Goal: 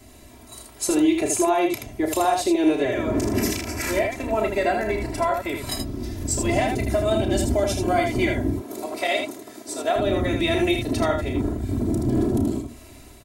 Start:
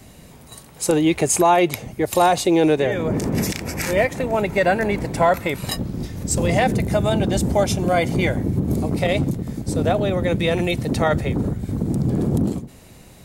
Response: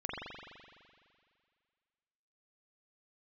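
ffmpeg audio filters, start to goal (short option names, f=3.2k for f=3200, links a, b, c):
-filter_complex "[0:a]asettb=1/sr,asplit=3[a][b][c];[a]atrim=end=8.534[d];[b]atrim=start=8.53:end=9.96,asetpts=PTS-STARTPTS,afade=t=in:d=0.004:c=qsin,afade=t=out:st=1.426:d=0.004:c=qsin,highpass=580[e];[c]atrim=start=9.956[f];[d][e]acrossfade=d=0.004:c1=hsin:c2=qsin[g];[g][f]acrossfade=d=0.004:c1=qsin:c2=hsin,aecho=1:1:3:0.96,dynaudnorm=f=310:g=3:m=3.5dB,alimiter=limit=-7dB:level=0:latency=1:release=301,aecho=1:1:32|79:0.398|0.562,volume=-6dB"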